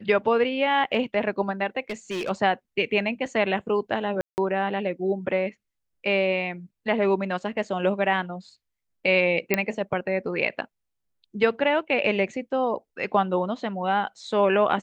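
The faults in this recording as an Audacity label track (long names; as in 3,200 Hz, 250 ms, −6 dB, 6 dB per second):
1.900000	2.300000	clipping −26 dBFS
4.210000	4.380000	drop-out 169 ms
9.540000	9.540000	click −6 dBFS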